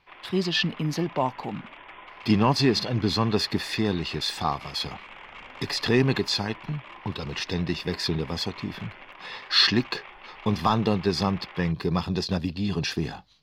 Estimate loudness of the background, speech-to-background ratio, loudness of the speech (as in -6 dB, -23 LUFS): -44.0 LUFS, 18.0 dB, -26.0 LUFS